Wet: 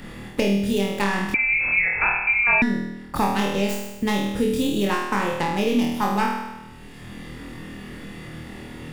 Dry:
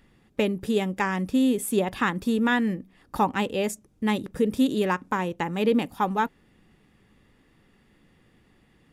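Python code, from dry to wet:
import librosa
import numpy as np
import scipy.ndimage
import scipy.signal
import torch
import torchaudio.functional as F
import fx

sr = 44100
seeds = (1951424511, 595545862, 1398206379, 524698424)

p1 = fx.tracing_dist(x, sr, depth_ms=0.15)
p2 = fx.low_shelf(p1, sr, hz=140.0, db=7.0)
p3 = p2 + fx.room_flutter(p2, sr, wall_m=4.3, rt60_s=0.75, dry=0)
p4 = fx.freq_invert(p3, sr, carrier_hz=2600, at=(1.34, 2.62))
p5 = fx.band_squash(p4, sr, depth_pct=70)
y = p5 * 10.0 ** (-2.0 / 20.0)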